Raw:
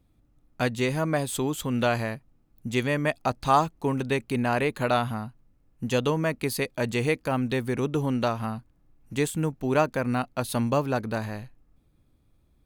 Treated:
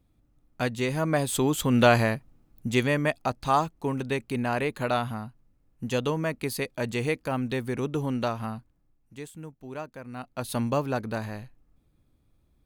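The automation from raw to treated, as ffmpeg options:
-af "volume=18.5dB,afade=t=in:st=0.86:d=1.1:silence=0.398107,afade=t=out:st=1.96:d=1.39:silence=0.375837,afade=t=out:st=8.54:d=0.59:silence=0.251189,afade=t=in:st=10.12:d=0.41:silence=0.237137"

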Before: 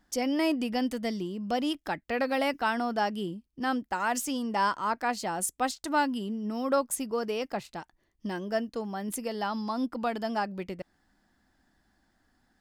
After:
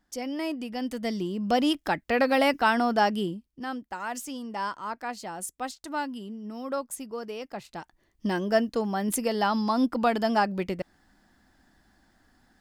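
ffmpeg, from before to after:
-af "volume=17dB,afade=t=in:st=0.75:d=0.71:silence=0.316228,afade=t=out:st=3.15:d=0.51:silence=0.298538,afade=t=in:st=7.53:d=0.76:silence=0.266073"

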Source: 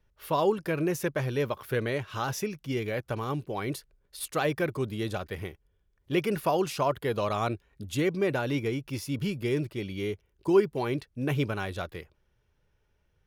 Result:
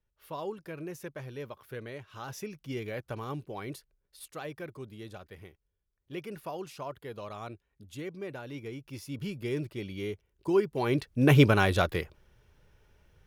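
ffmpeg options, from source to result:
-af "volume=16dB,afade=t=in:st=2.14:d=0.51:silence=0.473151,afade=t=out:st=3.38:d=0.99:silence=0.446684,afade=t=in:st=8.51:d=1.21:silence=0.354813,afade=t=in:st=10.7:d=0.68:silence=0.237137"

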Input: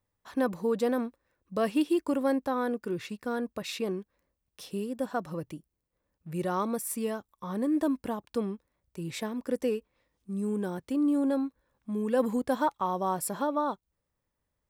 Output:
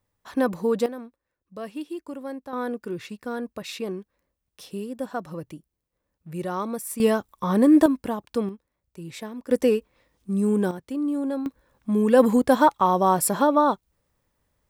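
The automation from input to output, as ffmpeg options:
-af "asetnsamples=n=441:p=0,asendcmd='0.86 volume volume -7.5dB;2.53 volume volume 1dB;7 volume volume 12dB;7.86 volume volume 5dB;8.49 volume volume -1.5dB;9.51 volume volume 9dB;10.71 volume volume 0dB;11.46 volume volume 10dB',volume=5dB"

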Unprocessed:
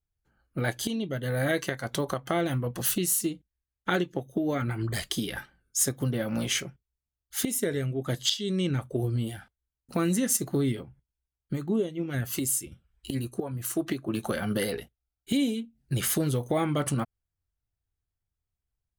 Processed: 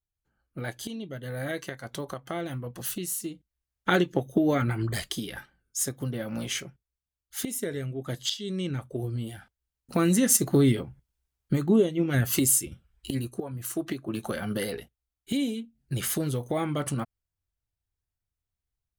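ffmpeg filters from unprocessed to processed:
-af "volume=15.5dB,afade=t=in:st=3.27:d=0.99:silence=0.251189,afade=t=out:st=4.26:d=0.96:silence=0.334965,afade=t=in:st=9.27:d=1.36:silence=0.334965,afade=t=out:st=12.43:d=1:silence=0.398107"

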